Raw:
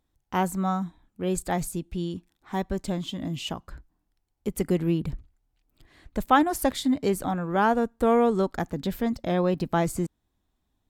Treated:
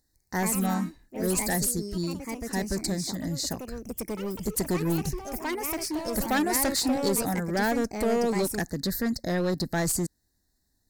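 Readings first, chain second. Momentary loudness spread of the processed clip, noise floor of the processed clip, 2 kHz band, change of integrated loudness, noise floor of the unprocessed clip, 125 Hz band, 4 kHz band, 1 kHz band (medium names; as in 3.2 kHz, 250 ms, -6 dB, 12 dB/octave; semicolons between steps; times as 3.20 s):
9 LU, -74 dBFS, +1.5 dB, -1.5 dB, -76 dBFS, -1.0 dB, +4.0 dB, -5.5 dB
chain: elliptic band-stop 1.8–4.2 kHz, stop band 40 dB; resonant high shelf 1.7 kHz +11.5 dB, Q 3; hard clipper -22 dBFS, distortion -10 dB; ever faster or slower copies 140 ms, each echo +3 st, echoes 3, each echo -6 dB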